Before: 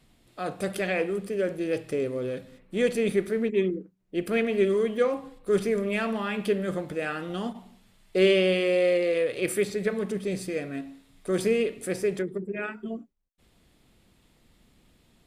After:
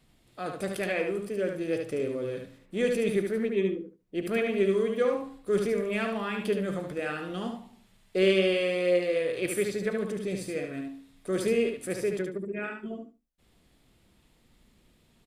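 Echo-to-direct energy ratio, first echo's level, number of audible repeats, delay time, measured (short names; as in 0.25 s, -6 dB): -5.0 dB, -5.0 dB, 2, 73 ms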